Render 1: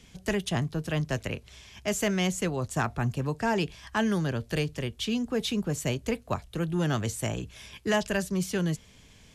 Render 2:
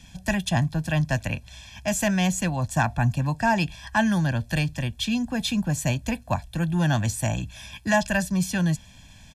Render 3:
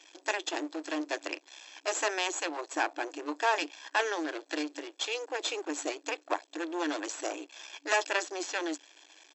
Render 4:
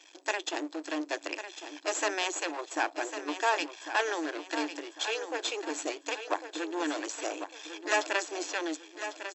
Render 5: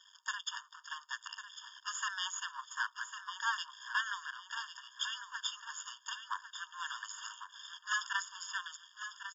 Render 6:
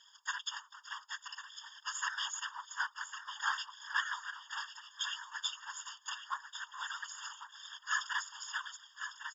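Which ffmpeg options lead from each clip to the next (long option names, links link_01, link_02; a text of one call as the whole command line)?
ffmpeg -i in.wav -af "aecho=1:1:1.2:0.94,volume=2dB" out.wav
ffmpeg -i in.wav -af "aeval=exprs='max(val(0),0)':channel_layout=same,afftfilt=real='re*between(b*sr/4096,290,7900)':imag='im*between(b*sr/4096,290,7900)':win_size=4096:overlap=0.75" out.wav
ffmpeg -i in.wav -af "aecho=1:1:1100|2200|3300|4400:0.316|0.12|0.0457|0.0174" out.wav
ffmpeg -i in.wav -af "afftfilt=real='re*eq(mod(floor(b*sr/1024/920),2),1)':imag='im*eq(mod(floor(b*sr/1024/920),2),1)':win_size=1024:overlap=0.75,volume=-2dB" out.wav
ffmpeg -i in.wav -af "afftfilt=real='hypot(re,im)*cos(2*PI*random(0))':imag='hypot(re,im)*sin(2*PI*random(1))':win_size=512:overlap=0.75,volume=6dB" out.wav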